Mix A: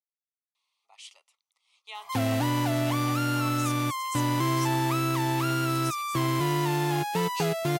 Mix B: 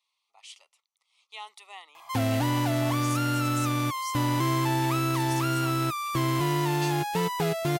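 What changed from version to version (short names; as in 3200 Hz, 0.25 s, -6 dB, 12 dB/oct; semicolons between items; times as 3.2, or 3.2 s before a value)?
speech: entry -0.55 s; master: remove HPF 86 Hz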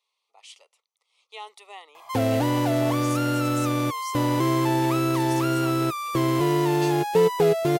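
master: add bell 460 Hz +14 dB 0.81 oct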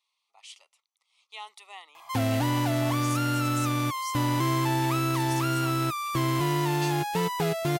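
master: add bell 460 Hz -14 dB 0.81 oct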